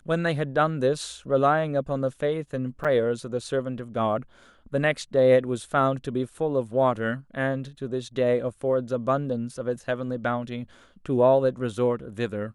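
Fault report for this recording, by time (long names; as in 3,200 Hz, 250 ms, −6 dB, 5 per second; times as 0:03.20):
0:02.84–0:02.85: drop-out 6.5 ms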